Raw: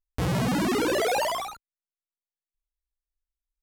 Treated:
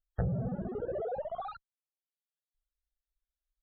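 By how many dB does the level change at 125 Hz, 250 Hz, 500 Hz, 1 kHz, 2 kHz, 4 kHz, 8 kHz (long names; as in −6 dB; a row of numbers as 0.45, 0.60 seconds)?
−5.0 dB, −11.5 dB, −9.0 dB, −13.0 dB, −23.5 dB, −32.0 dB, below −40 dB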